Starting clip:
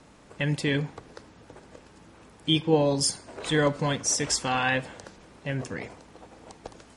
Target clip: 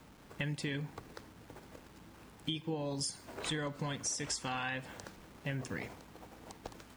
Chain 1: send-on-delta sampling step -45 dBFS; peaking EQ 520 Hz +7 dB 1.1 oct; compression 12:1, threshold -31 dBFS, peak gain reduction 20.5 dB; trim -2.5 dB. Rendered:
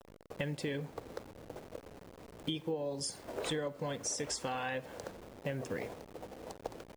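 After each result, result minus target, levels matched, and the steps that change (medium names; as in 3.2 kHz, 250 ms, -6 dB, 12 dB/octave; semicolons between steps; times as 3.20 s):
500 Hz band +6.5 dB; send-on-delta sampling: distortion +7 dB
change: peaking EQ 520 Hz -4 dB 1.1 oct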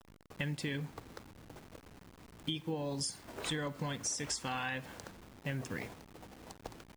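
send-on-delta sampling: distortion +7 dB
change: send-on-delta sampling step -52 dBFS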